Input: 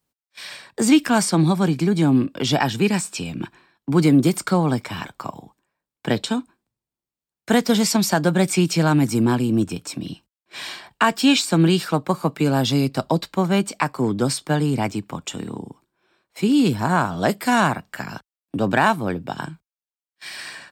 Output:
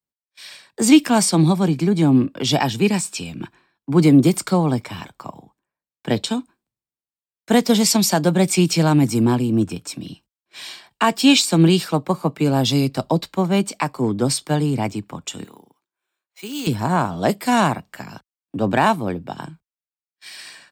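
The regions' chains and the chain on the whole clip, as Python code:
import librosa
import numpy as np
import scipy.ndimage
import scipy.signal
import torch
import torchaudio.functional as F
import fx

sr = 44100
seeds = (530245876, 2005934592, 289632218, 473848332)

y = fx.chain(x, sr, fx.highpass(hz=1000.0, slope=6),
    fx.resample_bad(factor=4, down='filtered', up='hold'), at=(15.44, 16.67))
y = fx.dynamic_eq(y, sr, hz=1500.0, q=2.3, threshold_db=-39.0, ratio=4.0, max_db=-6)
y = fx.band_widen(y, sr, depth_pct=40)
y = y * 10.0 ** (1.5 / 20.0)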